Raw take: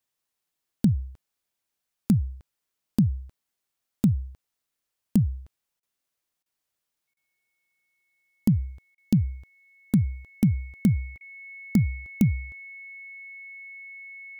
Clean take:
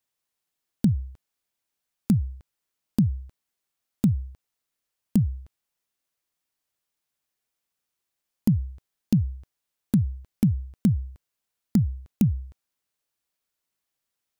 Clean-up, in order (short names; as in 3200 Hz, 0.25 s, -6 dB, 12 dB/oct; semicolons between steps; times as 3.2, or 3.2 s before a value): notch 2200 Hz, Q 30; interpolate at 5.8/6.43/7.14/8.95/11.18, 27 ms